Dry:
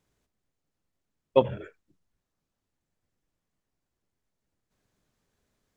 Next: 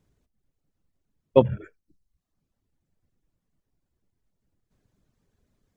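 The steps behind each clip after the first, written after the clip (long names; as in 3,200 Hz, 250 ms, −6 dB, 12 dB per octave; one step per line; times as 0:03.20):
low-shelf EQ 410 Hz +11.5 dB
reverb reduction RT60 0.7 s
level −1 dB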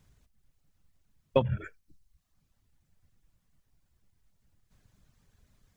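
parametric band 360 Hz −10.5 dB 1.9 octaves
downward compressor 6 to 1, threshold −29 dBFS, peak gain reduction 12 dB
level +8 dB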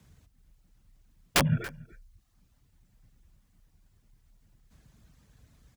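frequency shifter +31 Hz
wrap-around overflow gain 20.5 dB
single-tap delay 282 ms −22 dB
level +5 dB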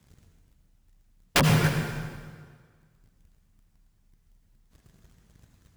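leveller curve on the samples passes 2
on a send at −2.5 dB: convolution reverb RT60 1.7 s, pre-delay 67 ms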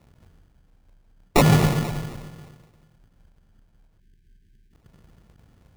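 decimation without filtering 28×
gain on a spectral selection 0:04.00–0:04.73, 450–1,500 Hz −25 dB
every ending faded ahead of time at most 110 dB per second
level +5.5 dB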